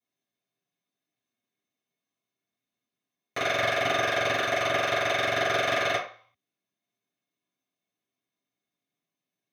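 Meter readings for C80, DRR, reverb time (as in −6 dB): 11.5 dB, −12.0 dB, 0.45 s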